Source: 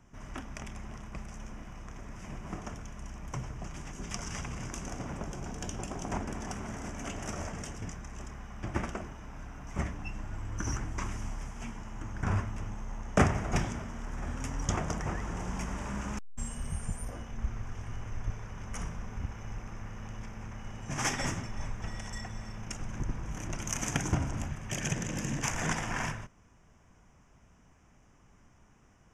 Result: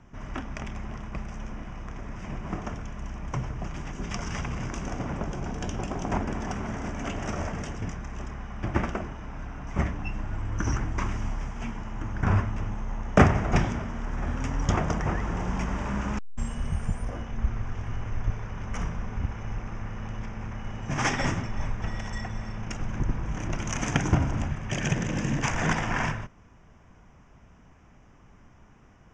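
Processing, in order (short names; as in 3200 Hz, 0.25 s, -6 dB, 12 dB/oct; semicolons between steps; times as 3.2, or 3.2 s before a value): air absorption 120 m; gain +7 dB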